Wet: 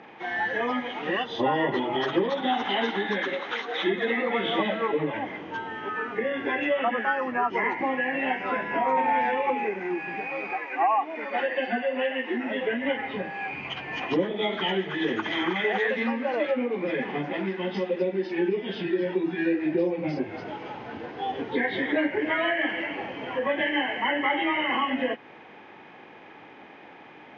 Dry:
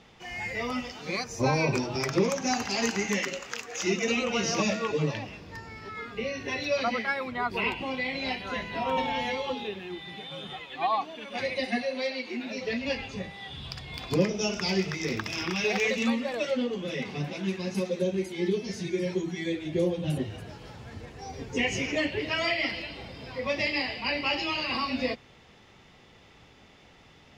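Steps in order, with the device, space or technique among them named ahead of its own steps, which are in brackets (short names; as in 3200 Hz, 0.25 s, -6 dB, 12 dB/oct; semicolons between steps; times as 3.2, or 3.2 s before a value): hearing aid with frequency lowering (nonlinear frequency compression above 1200 Hz 1.5:1; compressor 2.5:1, threshold -34 dBFS, peak gain reduction 10.5 dB; speaker cabinet 260–5900 Hz, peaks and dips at 310 Hz +6 dB, 850 Hz +6 dB, 3900 Hz -6 dB); 10.29–11.68 HPF 270 Hz 12 dB/oct; gain +8.5 dB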